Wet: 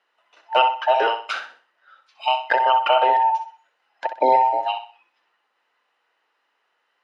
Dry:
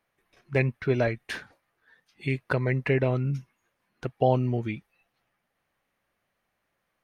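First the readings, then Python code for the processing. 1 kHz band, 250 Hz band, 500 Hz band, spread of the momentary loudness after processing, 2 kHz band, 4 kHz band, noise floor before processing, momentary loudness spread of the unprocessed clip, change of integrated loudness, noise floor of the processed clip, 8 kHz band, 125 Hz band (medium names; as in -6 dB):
+19.0 dB, -10.5 dB, +4.5 dB, 13 LU, +6.0 dB, +17.5 dB, -79 dBFS, 13 LU, +7.5 dB, -72 dBFS, no reading, under -35 dB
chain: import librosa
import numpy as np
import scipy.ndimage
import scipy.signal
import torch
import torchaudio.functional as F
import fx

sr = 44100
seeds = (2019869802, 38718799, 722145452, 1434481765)

y = fx.band_invert(x, sr, width_hz=1000)
y = fx.bandpass_edges(y, sr, low_hz=640.0, high_hz=4500.0)
y = fx.echo_feedback(y, sr, ms=63, feedback_pct=33, wet_db=-9.5)
y = F.gain(torch.from_numpy(y), 8.5).numpy()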